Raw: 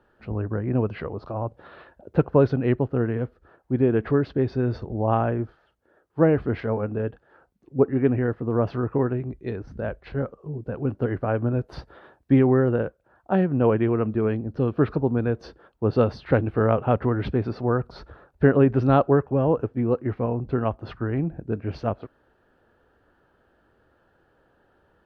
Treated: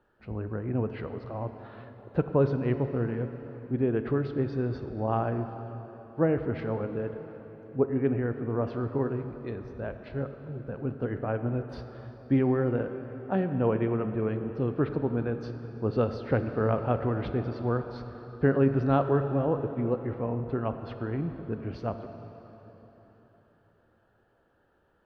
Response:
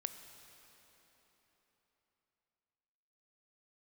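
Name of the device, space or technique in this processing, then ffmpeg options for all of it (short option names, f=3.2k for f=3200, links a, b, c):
cathedral: -filter_complex "[1:a]atrim=start_sample=2205[a];[0:a][a]afir=irnorm=-1:irlink=0,volume=-4dB"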